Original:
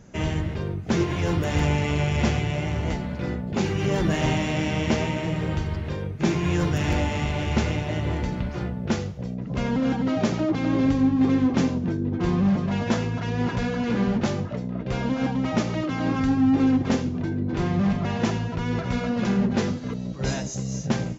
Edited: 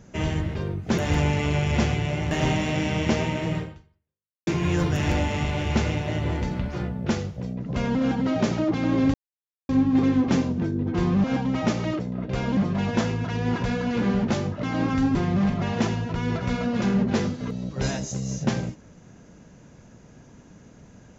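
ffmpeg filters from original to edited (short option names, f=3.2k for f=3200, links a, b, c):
-filter_complex "[0:a]asplit=10[a][b][c][d][e][f][g][h][i][j];[a]atrim=end=0.982[k];[b]atrim=start=1.428:end=2.762[l];[c]atrim=start=4.118:end=6.28,asetpts=PTS-STARTPTS,afade=t=out:st=1.272:d=0.89:c=exp[m];[d]atrim=start=6.28:end=10.95,asetpts=PTS-STARTPTS,afade=t=in:d=0.004:c=hsin,afade=t=out:st=4.666:d=0.004:c=hsin,apad=pad_dur=0.55[n];[e]atrim=start=10.95:end=12.502,asetpts=PTS-STARTPTS,afade=t=in:d=0.004:c=hsin[o];[f]atrim=start=15.138:end=15.892[p];[g]atrim=start=14.558:end=15.142[q];[h]atrim=start=12.498:end=14.562[r];[i]atrim=start=15.888:end=16.412[s];[j]atrim=start=17.578[t];[k][l]acrossfade=d=0.004:c1=hsin:c2=hsin[u];[m][n][o]concat=n=3:v=0:a=1[v];[u][v]acrossfade=d=0.004:c1=hsin:c2=hsin[w];[w][p]acrossfade=d=0.004:c1=hsin:c2=hsin[x];[x][q]acrossfade=d=0.004:c1=hsin:c2=hsin[y];[y][r]acrossfade=d=0.004:c1=hsin:c2=hsin[z];[z][s]acrossfade=d=0.004:c1=hsin:c2=hsin[aa];[aa][t]acrossfade=d=0.004:c1=hsin:c2=hsin"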